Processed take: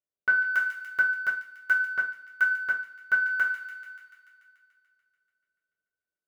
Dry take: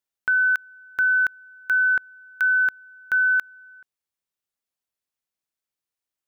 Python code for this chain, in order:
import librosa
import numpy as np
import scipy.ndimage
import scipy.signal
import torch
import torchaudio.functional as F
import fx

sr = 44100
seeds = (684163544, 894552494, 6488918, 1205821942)

y = fx.wiener(x, sr, points=41)
y = fx.low_shelf(y, sr, hz=320.0, db=-5.0)
y = fx.notch_comb(y, sr, f0_hz=830.0)
y = fx.echo_wet_highpass(y, sr, ms=145, feedback_pct=70, hz=2300.0, wet_db=-7)
y = fx.rev_double_slope(y, sr, seeds[0], early_s=0.38, late_s=1.6, knee_db=-18, drr_db=-4.5)
y = fx.upward_expand(y, sr, threshold_db=-34.0, expansion=1.5, at=(1.01, 3.26))